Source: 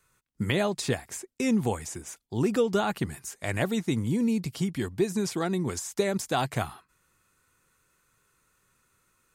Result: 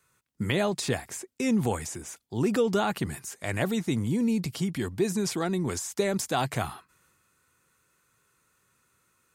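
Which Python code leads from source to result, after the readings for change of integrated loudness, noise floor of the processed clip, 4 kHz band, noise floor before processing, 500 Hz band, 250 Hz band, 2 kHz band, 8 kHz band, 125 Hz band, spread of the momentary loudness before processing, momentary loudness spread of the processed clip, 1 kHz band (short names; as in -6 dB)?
0.0 dB, -71 dBFS, +0.5 dB, -72 dBFS, 0.0 dB, 0.0 dB, 0.0 dB, +1.5 dB, 0.0 dB, 9 LU, 10 LU, +0.5 dB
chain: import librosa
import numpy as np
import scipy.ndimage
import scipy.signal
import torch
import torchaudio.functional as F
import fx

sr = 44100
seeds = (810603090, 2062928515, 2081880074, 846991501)

y = scipy.signal.sosfilt(scipy.signal.butter(2, 68.0, 'highpass', fs=sr, output='sos'), x)
y = fx.transient(y, sr, attack_db=-1, sustain_db=4)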